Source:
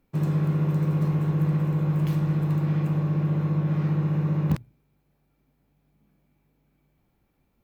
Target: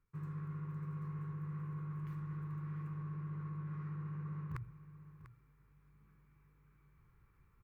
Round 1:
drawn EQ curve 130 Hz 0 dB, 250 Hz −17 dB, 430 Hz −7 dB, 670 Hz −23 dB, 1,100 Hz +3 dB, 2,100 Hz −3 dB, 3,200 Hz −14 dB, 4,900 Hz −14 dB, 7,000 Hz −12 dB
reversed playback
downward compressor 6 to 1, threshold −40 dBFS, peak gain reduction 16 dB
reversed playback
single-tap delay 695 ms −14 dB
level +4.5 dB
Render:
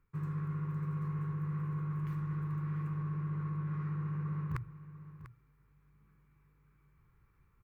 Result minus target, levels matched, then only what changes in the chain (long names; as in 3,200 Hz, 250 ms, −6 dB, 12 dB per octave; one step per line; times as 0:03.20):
downward compressor: peak gain reduction −6 dB
change: downward compressor 6 to 1, threshold −47.5 dBFS, peak gain reduction 22.5 dB